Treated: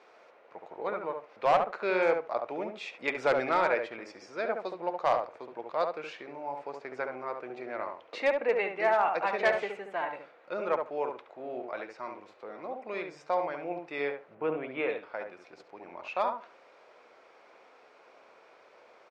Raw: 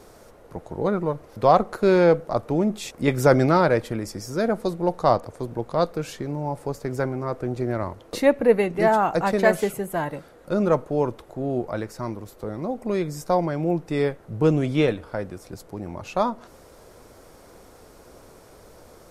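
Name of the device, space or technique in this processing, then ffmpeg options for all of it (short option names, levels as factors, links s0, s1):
megaphone: -filter_complex "[0:a]highpass=620,lowpass=3400,equalizer=f=2400:t=o:w=0.44:g=8,asoftclip=type=hard:threshold=0.224,lowpass=6800,asplit=3[s0][s1][s2];[s0]afade=t=out:st=14.34:d=0.02[s3];[s1]lowpass=2000,afade=t=in:st=14.34:d=0.02,afade=t=out:st=14.88:d=0.02[s4];[s2]afade=t=in:st=14.88:d=0.02[s5];[s3][s4][s5]amix=inputs=3:normalize=0,asplit=2[s6][s7];[s7]adelay=70,lowpass=f=1400:p=1,volume=0.631,asplit=2[s8][s9];[s9]adelay=70,lowpass=f=1400:p=1,volume=0.16,asplit=2[s10][s11];[s11]adelay=70,lowpass=f=1400:p=1,volume=0.16[s12];[s6][s8][s10][s12]amix=inputs=4:normalize=0,volume=0.562"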